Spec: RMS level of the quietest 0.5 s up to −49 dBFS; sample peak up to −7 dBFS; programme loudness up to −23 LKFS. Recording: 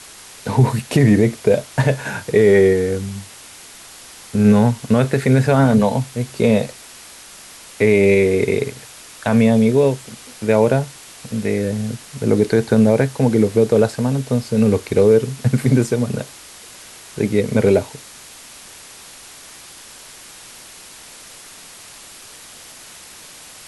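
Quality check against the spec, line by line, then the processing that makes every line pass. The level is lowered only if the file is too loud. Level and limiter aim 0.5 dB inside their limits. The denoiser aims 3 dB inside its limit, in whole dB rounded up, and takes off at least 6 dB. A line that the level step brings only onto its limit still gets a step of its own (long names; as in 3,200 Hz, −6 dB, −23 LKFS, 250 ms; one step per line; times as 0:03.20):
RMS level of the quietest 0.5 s −40 dBFS: out of spec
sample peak −3.5 dBFS: out of spec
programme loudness −17.0 LKFS: out of spec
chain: broadband denoise 6 dB, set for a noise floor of −40 dBFS
level −6.5 dB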